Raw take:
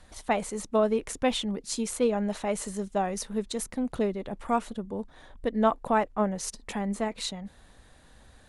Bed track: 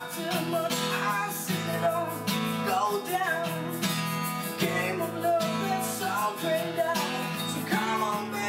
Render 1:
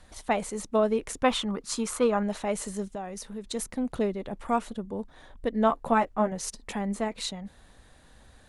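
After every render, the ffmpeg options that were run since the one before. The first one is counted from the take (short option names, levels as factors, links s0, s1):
-filter_complex "[0:a]asettb=1/sr,asplit=3[s0][s1][s2];[s0]atrim=end=1.244[s3];[s1]atrim=start=1.24:end=2.23,asetpts=PTS-STARTPTS,afade=t=in:d=0.004:c=qsin,afade=t=out:st=0.986:d=0.004:c=qsin,equalizer=f=1200:w=1.8:g=13[s4];[s2]atrim=start=2.226[s5];[s3][s4]acrossfade=d=0.004:c1=hsin:c2=qsin[s6];[s6][s5]acrossfade=d=0.004:c1=qsin:c2=hsin,asettb=1/sr,asplit=3[s7][s8][s9];[s7]atrim=end=2.954[s10];[s8]atrim=start=2.95:end=3.44,asetpts=PTS-STARTPTS,afade=t=in:d=0.004:c=qsin,afade=t=out:st=0.486:d=0.004:c=qsin,acompressor=threshold=0.0112:ratio=2:attack=3.2:release=140:knee=1:detection=peak[s11];[s9]atrim=start=3.436[s12];[s10][s11]acrossfade=d=0.004:c1=hsin:c2=qsin[s13];[s13][s12]acrossfade=d=0.004:c1=qsin:c2=hsin,asettb=1/sr,asplit=3[s14][s15][s16];[s14]atrim=end=5.684[s17];[s15]atrim=start=5.68:end=6.32,asetpts=PTS-STARTPTS,afade=t=in:d=0.004:c=qsin,afade=t=out:st=0.636:d=0.004:c=qsin,asplit=2[s18][s19];[s19]adelay=13,volume=0.562[s20];[s18][s20]amix=inputs=2:normalize=0,atrim=end_sample=28224[s21];[s16]atrim=start=6.316[s22];[s17][s21]acrossfade=d=0.004:c1=hsin:c2=qsin[s23];[s23][s22]acrossfade=d=0.004:c1=qsin:c2=hsin"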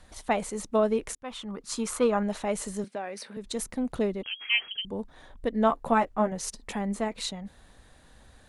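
-filter_complex "[0:a]asettb=1/sr,asplit=3[s0][s1][s2];[s0]atrim=end=2.844[s3];[s1]atrim=start=2.84:end=3.37,asetpts=PTS-STARTPTS,afade=t=in:d=0.004:c=qsin,afade=t=out:st=0.526:d=0.004:c=qsin,highpass=f=160:w=0.5412,highpass=f=160:w=1.3066,equalizer=f=180:t=q:w=4:g=-8,equalizer=f=560:t=q:w=4:g=4,equalizer=f=1600:t=q:w=4:g=7,equalizer=f=2300:t=q:w=4:g=9,equalizer=f=4400:t=q:w=4:g=7,equalizer=f=6900:t=q:w=4:g=-9,lowpass=f=10000:w=0.5412,lowpass=f=10000:w=1.3066[s4];[s2]atrim=start=3.366[s5];[s3][s4]acrossfade=d=0.004:c1=hsin:c2=qsin[s6];[s6][s5]acrossfade=d=0.004:c1=qsin:c2=hsin,asettb=1/sr,asplit=3[s7][s8][s9];[s7]atrim=end=4.234[s10];[s8]atrim=start=4.23:end=4.85,asetpts=PTS-STARTPTS,afade=t=in:d=0.004:c=qsin,afade=t=out:st=0.616:d=0.004:c=qsin,lowpass=f=2800:t=q:w=0.5098,lowpass=f=2800:t=q:w=0.6013,lowpass=f=2800:t=q:w=0.9,lowpass=f=2800:t=q:w=2.563,afreqshift=-3300[s11];[s9]atrim=start=4.846[s12];[s10][s11]acrossfade=d=0.004:c1=hsin:c2=qsin[s13];[s13][s12]acrossfade=d=0.004:c1=qsin:c2=hsin,asplit=2[s14][s15];[s14]atrim=end=1.15,asetpts=PTS-STARTPTS,afade=t=out:st=1.146:d=0.004:c=hsin[s16];[s15]atrim=start=1.15,asetpts=PTS-STARTPTS,afade=t=in:d=0.73[s17];[s16][s17]concat=n=2:v=0:a=1"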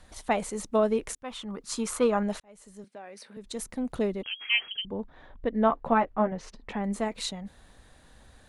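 -filter_complex "[0:a]asettb=1/sr,asplit=3[s0][s1][s2];[s0]atrim=end=4.844[s3];[s1]atrim=start=4.84:end=6.84,asetpts=PTS-STARTPTS,afade=t=in:d=0.004:c=qsin,afade=t=out:st=1.996:d=0.004:c=qsin,lowpass=2800[s4];[s2]atrim=start=6.836[s5];[s3][s4]acrossfade=d=0.004:c1=hsin:c2=qsin[s6];[s6][s5]acrossfade=d=0.004:c1=qsin:c2=hsin,asplit=2[s7][s8];[s7]atrim=end=2.4,asetpts=PTS-STARTPTS,afade=t=out:st=2.396:d=0.004:c=hsin[s9];[s8]atrim=start=2.4,asetpts=PTS-STARTPTS,afade=t=in:d=1.73[s10];[s9][s10]concat=n=2:v=0:a=1"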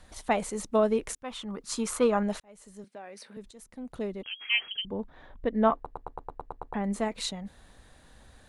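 -filter_complex "[0:a]asplit=11[s0][s1][s2][s3][s4][s5][s6][s7][s8][s9][s10];[s0]atrim=end=3.51,asetpts=PTS-STARTPTS,afade=t=out:st=3.506:d=0.004:c=hsin:silence=0.133352[s11];[s1]atrim=start=3.51:end=5.862,asetpts=PTS-STARTPTS,afade=t=in:d=1.22:silence=0.133352[s12];[s2]atrim=start=5.748:end=5.862[s13];[s3]atrim=start=5.748:end=5.862[s14];[s4]atrim=start=5.748:end=5.862[s15];[s5]atrim=start=5.748:end=5.862[s16];[s6]atrim=start=5.748:end=5.862[s17];[s7]atrim=start=5.748:end=5.862[s18];[s8]atrim=start=5.748:end=5.862[s19];[s9]atrim=start=5.748:end=5.862[s20];[s10]atrim=start=6.738[s21];[s11][s12]concat=n=2:v=0:a=1[s22];[s22][s13]acrossfade=d=0.004:c1=hsin:c2=hsin[s23];[s23][s14]acrossfade=d=0.004:c1=hsin:c2=hsin[s24];[s24][s15]acrossfade=d=0.004:c1=hsin:c2=hsin[s25];[s25][s16]acrossfade=d=0.004:c1=hsin:c2=hsin[s26];[s26][s17]acrossfade=d=0.004:c1=hsin:c2=hsin[s27];[s27][s18]acrossfade=d=0.004:c1=hsin:c2=hsin[s28];[s28][s19]acrossfade=d=0.004:c1=hsin:c2=hsin[s29];[s29][s20]acrossfade=d=0.004:c1=hsin:c2=hsin[s30];[s30][s21]acrossfade=d=0.004:c1=hsin:c2=hsin"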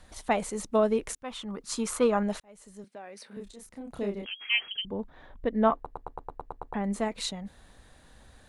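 -filter_complex "[0:a]asettb=1/sr,asplit=3[s0][s1][s2];[s0]atrim=end=3.284[s3];[s1]atrim=start=3.28:end=4.3,asetpts=PTS-STARTPTS,afade=t=in:d=0.004:c=qsin,afade=t=out:st=1.016:d=0.004:c=qsin,asplit=2[s4][s5];[s5]adelay=30,volume=0.708[s6];[s4][s6]amix=inputs=2:normalize=0,atrim=end_sample=44982[s7];[s2]atrim=start=4.296[s8];[s3][s7]acrossfade=d=0.004:c1=hsin:c2=qsin[s9];[s9][s8]acrossfade=d=0.004:c1=qsin:c2=hsin"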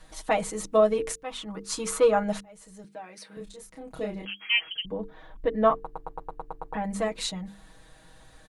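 -af "bandreject=f=50:t=h:w=6,bandreject=f=100:t=h:w=6,bandreject=f=150:t=h:w=6,bandreject=f=200:t=h:w=6,bandreject=f=250:t=h:w=6,bandreject=f=300:t=h:w=6,bandreject=f=350:t=h:w=6,bandreject=f=400:t=h:w=6,bandreject=f=450:t=h:w=6,aecho=1:1:6.3:0.93"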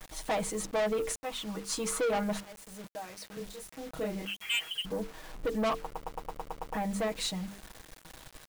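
-af "acrusher=bits=7:mix=0:aa=0.000001,asoftclip=type=tanh:threshold=0.0501"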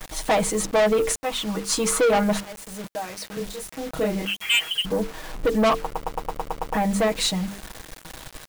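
-af "volume=3.35"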